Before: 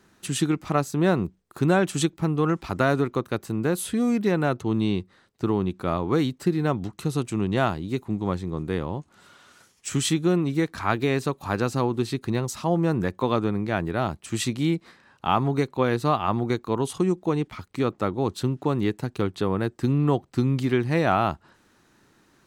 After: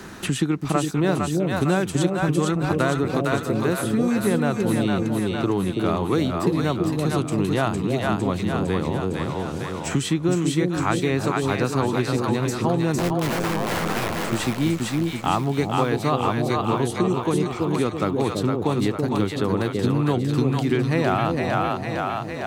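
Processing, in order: 12.98–14.21 wrapped overs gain 24.5 dB; split-band echo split 600 Hz, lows 0.331 s, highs 0.456 s, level -3 dB; three-band squash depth 70%

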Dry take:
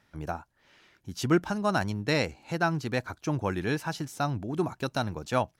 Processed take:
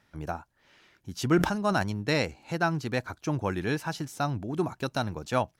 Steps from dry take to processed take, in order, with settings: 1.21–1.83 sustainer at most 81 dB/s

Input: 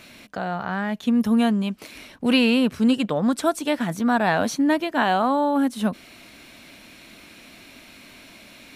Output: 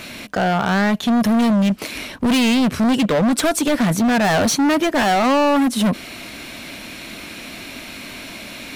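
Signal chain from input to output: in parallel at -2.5 dB: limiter -15.5 dBFS, peak gain reduction 8.5 dB; on the sum: hard clip -21.5 dBFS, distortion -6 dB; gain +7.5 dB

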